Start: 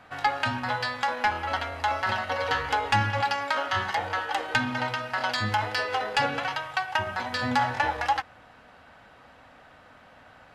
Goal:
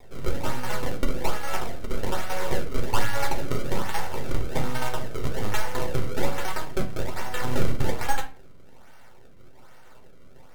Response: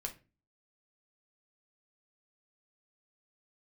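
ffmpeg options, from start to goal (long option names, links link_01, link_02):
-filter_complex "[0:a]acrusher=samples=29:mix=1:aa=0.000001:lfo=1:lforange=46.4:lforate=1.2,aeval=exprs='max(val(0),0)':channel_layout=same[link_01];[1:a]atrim=start_sample=2205,asetrate=38808,aresample=44100[link_02];[link_01][link_02]afir=irnorm=-1:irlink=0,volume=2.5dB"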